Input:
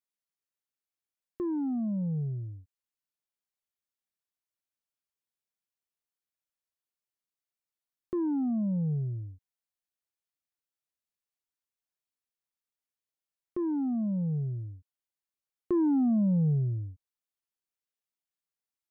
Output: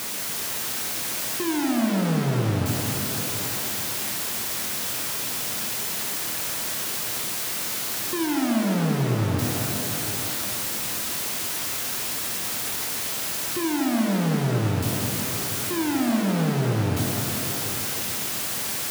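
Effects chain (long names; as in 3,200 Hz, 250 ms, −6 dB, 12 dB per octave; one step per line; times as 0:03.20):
sign of each sample alone
high-pass filter 110 Hz 12 dB per octave
low-shelf EQ 220 Hz +7 dB
reverb with rising layers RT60 3.8 s, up +12 semitones, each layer −8 dB, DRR 0.5 dB
level +6.5 dB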